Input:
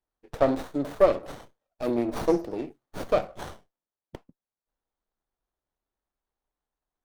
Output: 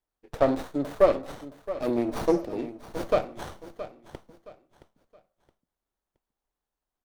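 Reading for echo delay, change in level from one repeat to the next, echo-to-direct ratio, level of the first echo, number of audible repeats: 0.67 s, -10.0 dB, -13.5 dB, -14.0 dB, 3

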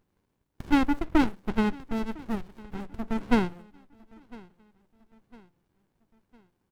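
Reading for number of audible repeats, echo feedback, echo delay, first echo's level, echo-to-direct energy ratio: 2, 46%, 1.005 s, -23.0 dB, -22.0 dB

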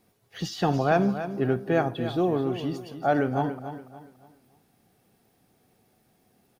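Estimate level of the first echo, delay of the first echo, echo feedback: -11.0 dB, 0.285 s, 34%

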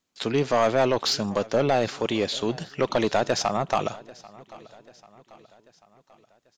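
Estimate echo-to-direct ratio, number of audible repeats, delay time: -20.0 dB, 3, 0.79 s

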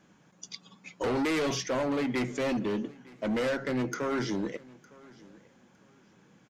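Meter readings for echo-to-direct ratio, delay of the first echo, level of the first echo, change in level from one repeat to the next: -22.5 dB, 0.909 s, -23.0 dB, -11.5 dB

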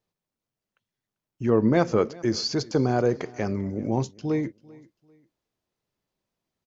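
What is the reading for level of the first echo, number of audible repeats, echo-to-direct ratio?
-23.0 dB, 2, -22.5 dB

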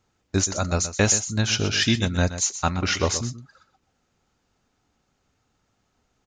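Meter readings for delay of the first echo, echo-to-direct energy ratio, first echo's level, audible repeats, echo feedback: 0.125 s, -12.0 dB, -12.0 dB, 1, no steady repeat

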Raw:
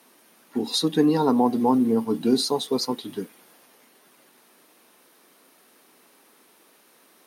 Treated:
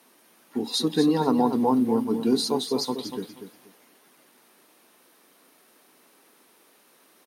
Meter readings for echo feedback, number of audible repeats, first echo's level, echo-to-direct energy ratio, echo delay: 21%, 2, -9.0 dB, -9.0 dB, 0.24 s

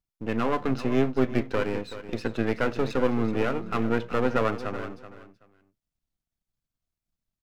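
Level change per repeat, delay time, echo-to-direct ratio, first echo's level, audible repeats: -14.0 dB, 0.379 s, -13.0 dB, -13.0 dB, 2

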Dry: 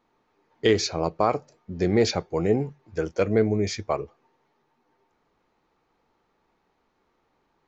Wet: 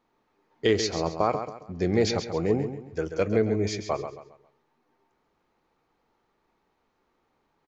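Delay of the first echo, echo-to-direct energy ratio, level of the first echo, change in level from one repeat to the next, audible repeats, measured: 0.135 s, -8.5 dB, -9.0 dB, -9.5 dB, 3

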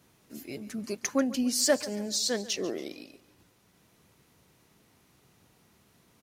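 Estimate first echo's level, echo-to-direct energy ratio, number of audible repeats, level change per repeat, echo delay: -17.5 dB, -16.5 dB, 3, -7.5 dB, 0.141 s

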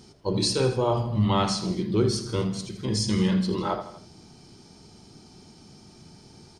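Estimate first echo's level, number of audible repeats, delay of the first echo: -13.0 dB, 3, 81 ms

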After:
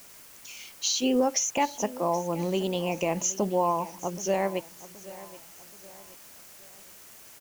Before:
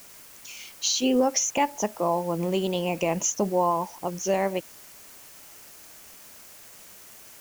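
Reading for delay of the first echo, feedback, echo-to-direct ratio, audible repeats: 0.775 s, 41%, -17.0 dB, 3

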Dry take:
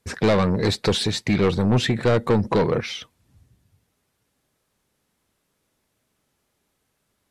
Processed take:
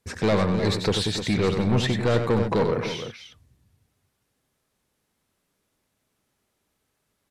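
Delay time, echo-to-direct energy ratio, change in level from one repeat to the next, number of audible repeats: 93 ms, -5.0 dB, no steady repeat, 2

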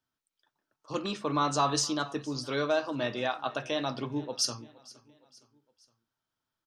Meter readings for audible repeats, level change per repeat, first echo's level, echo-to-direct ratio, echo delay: 2, -6.5 dB, -22.0 dB, -21.0 dB, 0.465 s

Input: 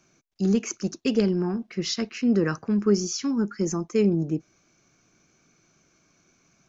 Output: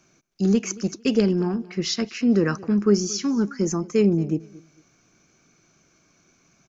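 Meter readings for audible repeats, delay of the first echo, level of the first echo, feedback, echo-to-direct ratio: 2, 0.226 s, -21.0 dB, 26%, -20.5 dB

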